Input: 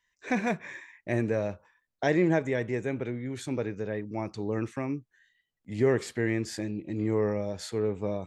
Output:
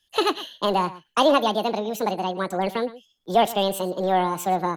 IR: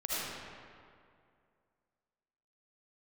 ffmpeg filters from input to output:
-filter_complex "[0:a]acrossover=split=150|1400[link_01][link_02][link_03];[link_01]aeval=exprs='0.015*(abs(mod(val(0)/0.015+3,4)-2)-1)':channel_layout=same[link_04];[link_04][link_02][link_03]amix=inputs=3:normalize=0,asplit=2[link_05][link_06];[link_06]adelay=198.3,volume=-17dB,highshelf=frequency=4000:gain=-4.46[link_07];[link_05][link_07]amix=inputs=2:normalize=0,asetrate=76440,aresample=44100,volume=7dB"

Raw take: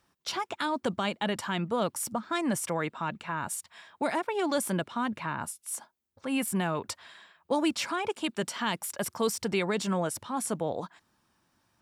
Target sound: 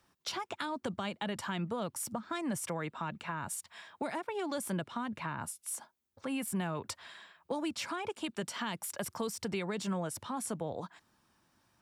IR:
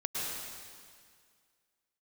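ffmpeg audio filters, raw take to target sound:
-filter_complex "[0:a]acrossover=split=140[link_01][link_02];[link_02]acompressor=threshold=-36dB:ratio=3[link_03];[link_01][link_03]amix=inputs=2:normalize=0"

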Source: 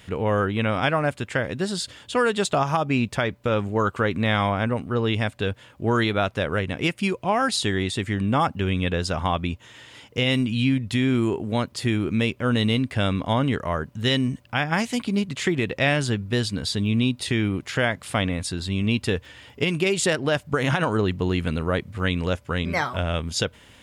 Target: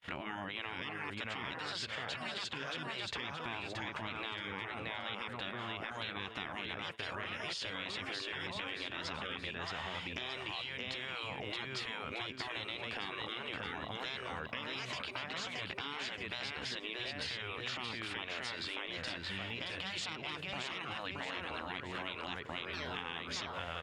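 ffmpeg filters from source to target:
ffmpeg -i in.wav -filter_complex "[0:a]alimiter=limit=-19dB:level=0:latency=1:release=225,aecho=1:1:624|1248|1872|2496:0.447|0.161|0.0579|0.0208,acrossover=split=6800[link_01][link_02];[link_02]acompressor=threshold=-56dB:ratio=4:attack=1:release=60[link_03];[link_01][link_03]amix=inputs=2:normalize=0,acrossover=split=570 4400:gain=0.224 1 0.178[link_04][link_05][link_06];[link_04][link_05][link_06]amix=inputs=3:normalize=0,afftfilt=real='re*lt(hypot(re,im),0.0398)':imag='im*lt(hypot(re,im),0.0398)':win_size=1024:overlap=0.75,acompressor=threshold=-43dB:ratio=8,agate=range=-41dB:threshold=-52dB:ratio=16:detection=peak,volume=6.5dB" out.wav

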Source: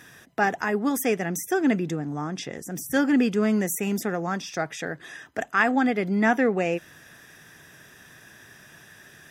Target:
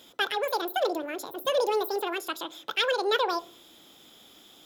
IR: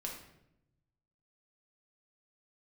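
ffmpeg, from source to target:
-filter_complex "[0:a]asplit=2[link_01][link_02];[link_02]lowshelf=frequency=390:gain=10.5[link_03];[1:a]atrim=start_sample=2205[link_04];[link_03][link_04]afir=irnorm=-1:irlink=0,volume=-17dB[link_05];[link_01][link_05]amix=inputs=2:normalize=0,asetrate=88200,aresample=44100,volume=-5dB"

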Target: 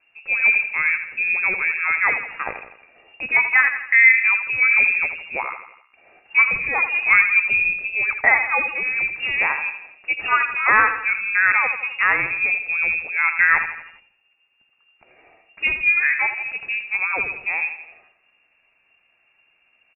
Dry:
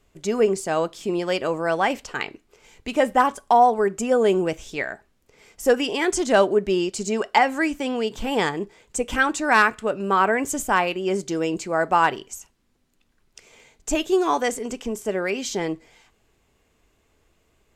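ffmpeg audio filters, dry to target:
ffmpeg -i in.wav -filter_complex "[0:a]asplit=2[link_01][link_02];[link_02]aecho=0:1:74|148|222|296|370:0.355|0.17|0.0817|0.0392|0.0188[link_03];[link_01][link_03]amix=inputs=2:normalize=0,atempo=0.89,lowpass=frequency=2400:width_type=q:width=0.5098,lowpass=frequency=2400:width_type=q:width=0.6013,lowpass=frequency=2400:width_type=q:width=0.9,lowpass=frequency=2400:width_type=q:width=2.563,afreqshift=-2800,volume=1.5dB" out.wav

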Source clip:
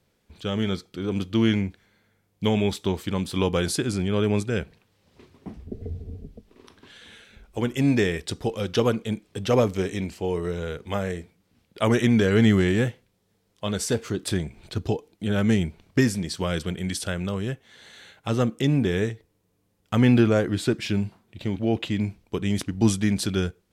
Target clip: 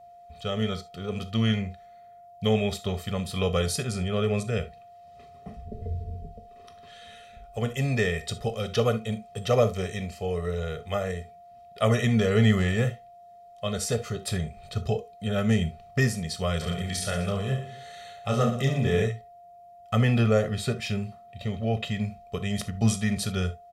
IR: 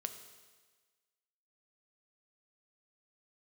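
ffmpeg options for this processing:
-filter_complex "[0:a]aecho=1:1:1.6:0.95,aeval=exprs='val(0)+0.00631*sin(2*PI*700*n/s)':channel_layout=same,asplit=3[link_01][link_02][link_03];[link_01]afade=type=out:start_time=16.6:duration=0.02[link_04];[link_02]aecho=1:1:30|69|119.7|185.6|271.3:0.631|0.398|0.251|0.158|0.1,afade=type=in:start_time=16.6:duration=0.02,afade=type=out:start_time=19.04:duration=0.02[link_05];[link_03]afade=type=in:start_time=19.04:duration=0.02[link_06];[link_04][link_05][link_06]amix=inputs=3:normalize=0[link_07];[1:a]atrim=start_sample=2205,atrim=end_sample=3528[link_08];[link_07][link_08]afir=irnorm=-1:irlink=0,volume=-2.5dB"

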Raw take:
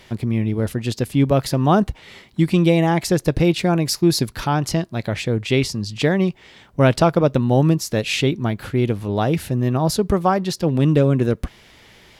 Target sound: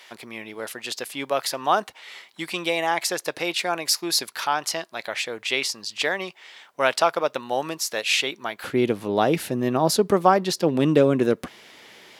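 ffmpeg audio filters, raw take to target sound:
ffmpeg -i in.wav -af "asetnsamples=nb_out_samples=441:pad=0,asendcmd='8.64 highpass f 270',highpass=800,volume=1.5dB" out.wav

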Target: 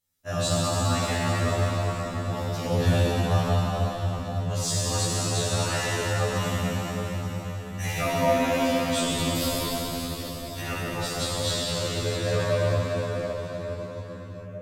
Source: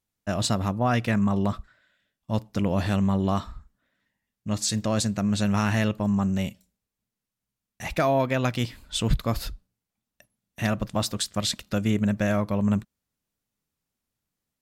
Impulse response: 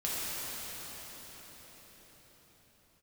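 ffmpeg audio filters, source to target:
-filter_complex "[0:a]asetnsamples=nb_out_samples=441:pad=0,asendcmd='10.61 highshelf g -4.5',highshelf=frequency=4300:gain=7.5,acontrast=83,alimiter=limit=-13.5dB:level=0:latency=1[link_01];[1:a]atrim=start_sample=2205[link_02];[link_01][link_02]afir=irnorm=-1:irlink=0,afftfilt=real='re*2*eq(mod(b,4),0)':imag='im*2*eq(mod(b,4),0)':win_size=2048:overlap=0.75,volume=-6dB"

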